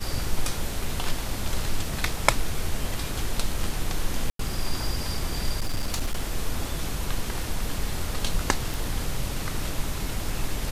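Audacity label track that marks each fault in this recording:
4.300000	4.390000	dropout 93 ms
5.560000	6.200000	clipped -21 dBFS
8.740000	8.740000	pop

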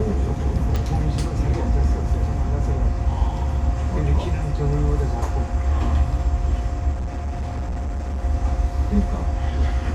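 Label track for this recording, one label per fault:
0.760000	0.760000	pop -12 dBFS
6.910000	8.200000	clipped -22.5 dBFS

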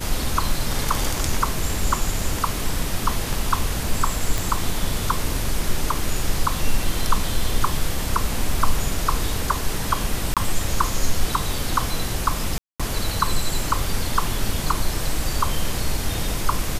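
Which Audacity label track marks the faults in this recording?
4.380000	4.380000	pop
10.340000	10.370000	dropout 27 ms
12.580000	12.800000	dropout 216 ms

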